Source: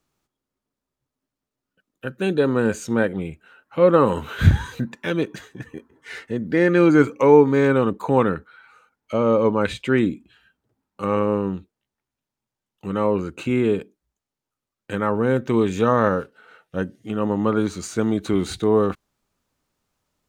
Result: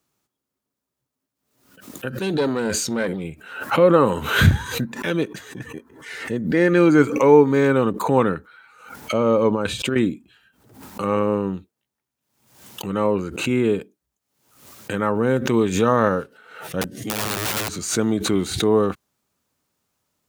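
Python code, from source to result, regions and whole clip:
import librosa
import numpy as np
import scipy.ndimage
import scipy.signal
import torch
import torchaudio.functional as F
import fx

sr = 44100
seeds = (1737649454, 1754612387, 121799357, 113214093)

y = fx.chain(x, sr, fx.peak_eq(hz=4500.0, db=10.0, octaves=0.53),
    fx.tube_stage(drive_db=13.0, bias=0.55),
    fx.sustainer(db_per_s=44.0), at=(2.11, 3.24))
y = fx.chain(y, sr, fx.peak_eq(hz=2000.0, db=-14.0, octaves=0.24),
    fx.over_compress(threshold_db=-22.0, ratio=-0.5), at=(9.51, 9.96))
y = fx.chain(y, sr, fx.overflow_wrap(gain_db=20.5),
    fx.band_squash(depth_pct=40), at=(16.81, 17.79))
y = scipy.signal.sosfilt(scipy.signal.butter(2, 75.0, 'highpass', fs=sr, output='sos'), y)
y = fx.high_shelf(y, sr, hz=7400.0, db=7.5)
y = fx.pre_swell(y, sr, db_per_s=82.0)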